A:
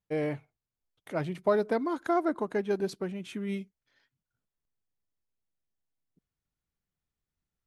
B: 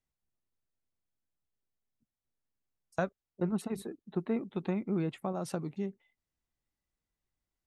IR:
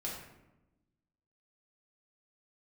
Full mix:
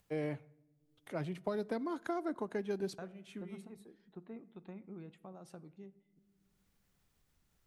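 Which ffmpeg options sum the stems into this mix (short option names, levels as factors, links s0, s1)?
-filter_complex "[0:a]acrossover=split=280|3000[s0][s1][s2];[s1]acompressor=threshold=0.0282:ratio=6[s3];[s0][s3][s2]amix=inputs=3:normalize=0,volume=0.531,asplit=2[s4][s5];[s5]volume=0.0794[s6];[1:a]volume=0.133,asplit=3[s7][s8][s9];[s8]volume=0.178[s10];[s9]apad=whole_len=338175[s11];[s4][s11]sidechaincompress=threshold=0.00141:ratio=8:attack=7.2:release=431[s12];[2:a]atrim=start_sample=2205[s13];[s6][s10]amix=inputs=2:normalize=0[s14];[s14][s13]afir=irnorm=-1:irlink=0[s15];[s12][s7][s15]amix=inputs=3:normalize=0,acompressor=mode=upward:threshold=0.00112:ratio=2.5"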